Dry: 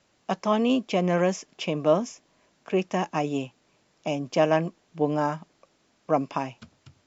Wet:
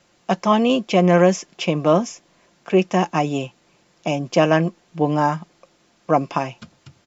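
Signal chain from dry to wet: comb 5.7 ms, depth 37%; gain +6.5 dB

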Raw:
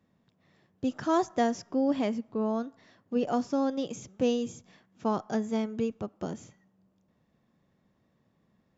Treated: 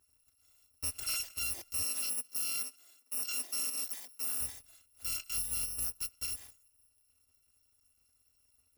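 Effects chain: FFT order left unsorted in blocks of 256 samples; 1.84–4.41 steep high-pass 210 Hz 48 dB/oct; limiter -26.5 dBFS, peak gain reduction 11 dB; gain -1.5 dB

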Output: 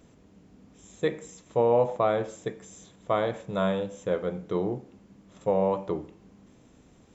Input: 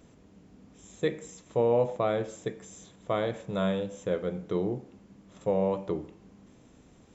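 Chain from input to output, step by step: dynamic EQ 950 Hz, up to +6 dB, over -40 dBFS, Q 1

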